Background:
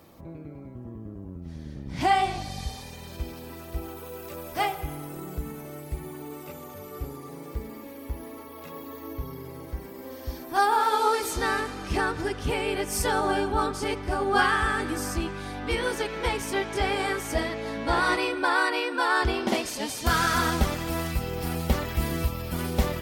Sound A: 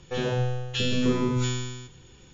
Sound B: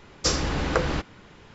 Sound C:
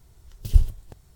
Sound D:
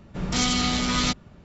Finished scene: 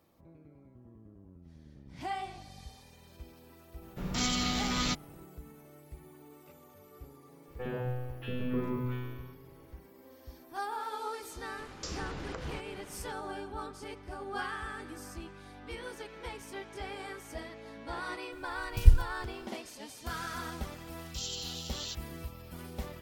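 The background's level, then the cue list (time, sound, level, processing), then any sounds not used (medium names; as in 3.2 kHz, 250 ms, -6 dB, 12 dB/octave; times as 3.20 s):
background -15 dB
3.82 s: add D -7.5 dB
7.48 s: add A -9 dB + low-pass 2.3 kHz 24 dB/octave
11.59 s: add B -2 dB + compression, threshold -36 dBFS
18.32 s: add C -2 dB
20.82 s: add D -12.5 dB + steep high-pass 2.7 kHz 96 dB/octave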